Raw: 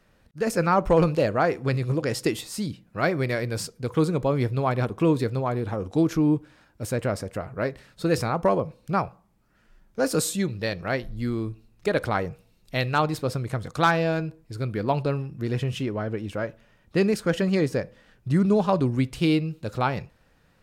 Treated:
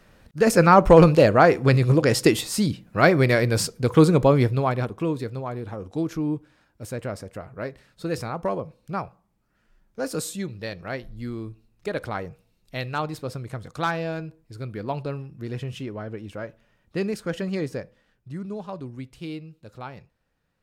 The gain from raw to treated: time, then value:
4.27 s +7 dB
5.09 s -5 dB
17.73 s -5 dB
18.33 s -13 dB

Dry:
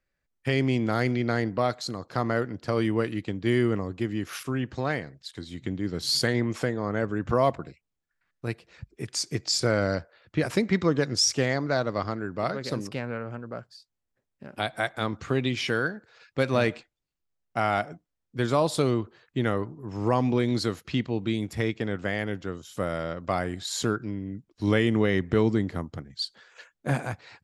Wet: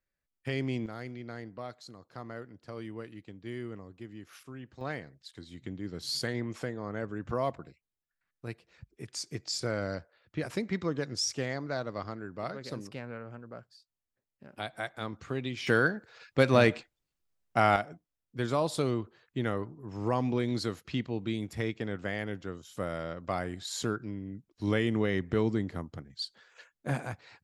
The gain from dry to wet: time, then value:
-8 dB
from 0.86 s -16 dB
from 4.81 s -8.5 dB
from 15.67 s +1.5 dB
from 17.76 s -5.5 dB

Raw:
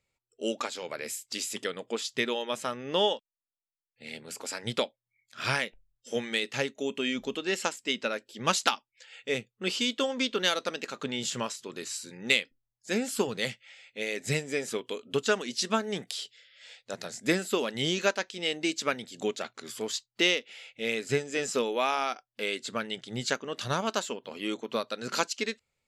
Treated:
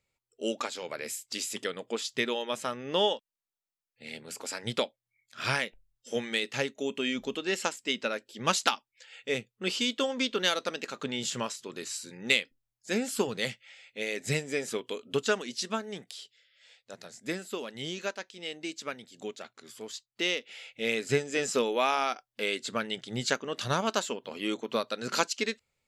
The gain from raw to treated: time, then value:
15.22 s -0.5 dB
16.11 s -8 dB
20.12 s -8 dB
20.54 s +1 dB

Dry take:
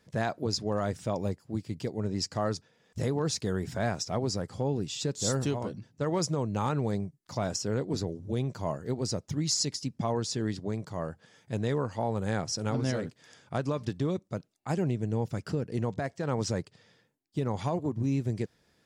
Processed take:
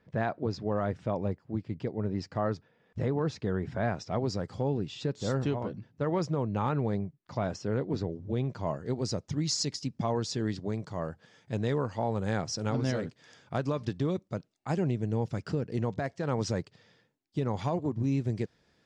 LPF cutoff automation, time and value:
3.82 s 2400 Hz
4.53 s 5400 Hz
4.88 s 3000 Hz
8.31 s 3000 Hz
8.98 s 6100 Hz

